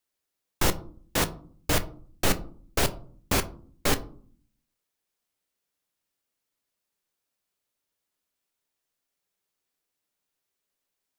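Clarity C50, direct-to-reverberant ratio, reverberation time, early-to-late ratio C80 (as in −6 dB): 17.5 dB, 10.0 dB, 0.50 s, 21.0 dB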